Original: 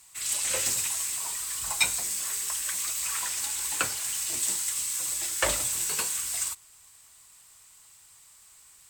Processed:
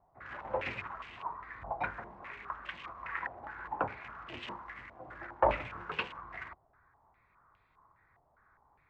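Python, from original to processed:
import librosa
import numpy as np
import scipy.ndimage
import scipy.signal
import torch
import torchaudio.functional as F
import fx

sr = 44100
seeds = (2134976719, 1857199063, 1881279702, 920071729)

y = fx.wiener(x, sr, points=15)
y = fx.air_absorb(y, sr, metres=290.0)
y = fx.filter_held_lowpass(y, sr, hz=4.9, low_hz=710.0, high_hz=2900.0)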